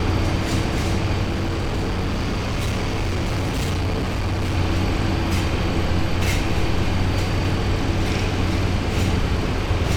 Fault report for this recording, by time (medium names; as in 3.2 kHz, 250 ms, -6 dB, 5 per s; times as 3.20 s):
1.23–4.55 s: clipped -19 dBFS